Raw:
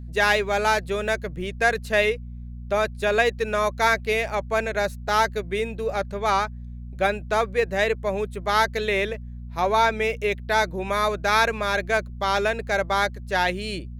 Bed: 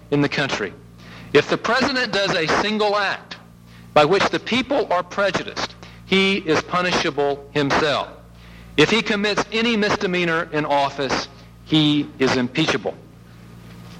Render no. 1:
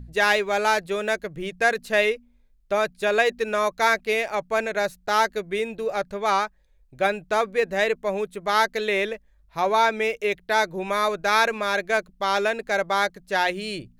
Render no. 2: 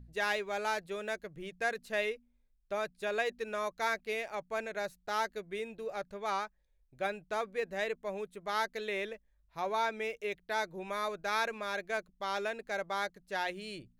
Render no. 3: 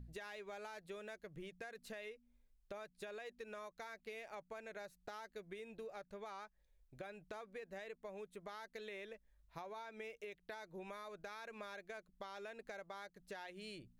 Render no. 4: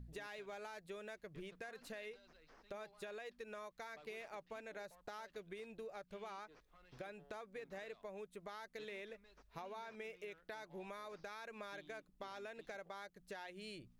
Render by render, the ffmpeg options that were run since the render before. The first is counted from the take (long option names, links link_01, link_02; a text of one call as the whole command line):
ffmpeg -i in.wav -af "bandreject=frequency=60:width_type=h:width=4,bandreject=frequency=120:width_type=h:width=4,bandreject=frequency=180:width_type=h:width=4,bandreject=frequency=240:width_type=h:width=4" out.wav
ffmpeg -i in.wav -af "volume=-12.5dB" out.wav
ffmpeg -i in.wav -af "alimiter=level_in=7dB:limit=-24dB:level=0:latency=1:release=226,volume=-7dB,acompressor=threshold=-47dB:ratio=6" out.wav
ffmpeg -i in.wav -i bed.wav -filter_complex "[1:a]volume=-47.5dB[link_01];[0:a][link_01]amix=inputs=2:normalize=0" out.wav